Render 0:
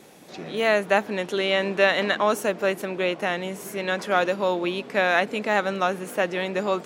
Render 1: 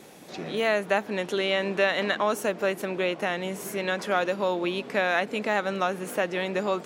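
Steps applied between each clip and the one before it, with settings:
downward compressor 1.5 to 1, threshold −29 dBFS, peak gain reduction 6 dB
level +1 dB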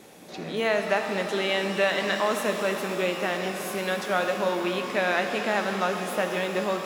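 reverb with rising layers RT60 3.6 s, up +12 semitones, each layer −8 dB, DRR 4 dB
level −1 dB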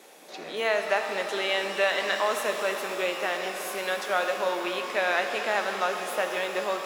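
high-pass filter 440 Hz 12 dB per octave

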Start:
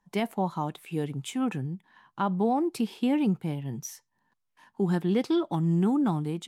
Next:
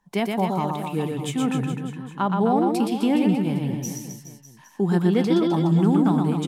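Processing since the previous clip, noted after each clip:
reverse bouncing-ball delay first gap 120 ms, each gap 1.15×, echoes 5
level +4 dB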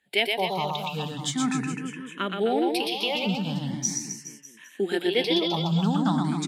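meter weighting curve D
frequency shifter mixed with the dry sound +0.41 Hz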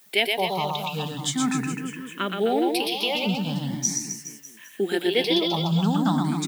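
background noise white −62 dBFS
high-shelf EQ 12,000 Hz +9.5 dB
level +1.5 dB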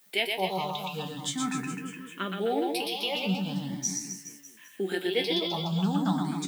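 tuned comb filter 94 Hz, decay 0.17 s, harmonics all, mix 80%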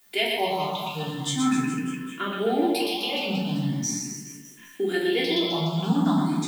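rectangular room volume 890 cubic metres, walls furnished, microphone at 3.2 metres

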